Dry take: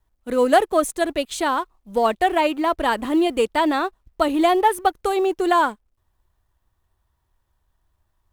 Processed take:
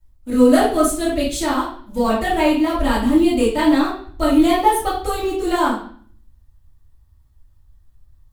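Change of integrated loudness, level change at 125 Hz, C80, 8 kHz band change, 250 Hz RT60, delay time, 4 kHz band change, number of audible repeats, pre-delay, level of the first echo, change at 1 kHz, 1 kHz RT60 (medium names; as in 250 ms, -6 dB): +2.5 dB, no reading, 9.0 dB, +5.0 dB, 0.80 s, no echo, +2.0 dB, no echo, 3 ms, no echo, -0.5 dB, 0.50 s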